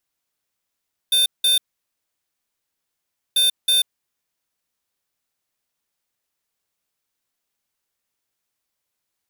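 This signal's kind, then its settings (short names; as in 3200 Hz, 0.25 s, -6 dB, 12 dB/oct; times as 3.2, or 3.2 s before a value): beep pattern square 3590 Hz, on 0.14 s, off 0.18 s, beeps 2, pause 1.78 s, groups 2, -16.5 dBFS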